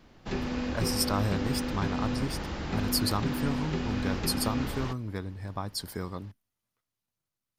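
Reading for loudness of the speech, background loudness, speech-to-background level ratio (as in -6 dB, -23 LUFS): -33.0 LUFS, -33.0 LUFS, 0.0 dB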